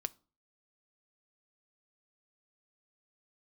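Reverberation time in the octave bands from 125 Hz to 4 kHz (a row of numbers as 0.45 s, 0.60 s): 0.50 s, 0.45 s, 0.40 s, 0.40 s, 0.25 s, 0.30 s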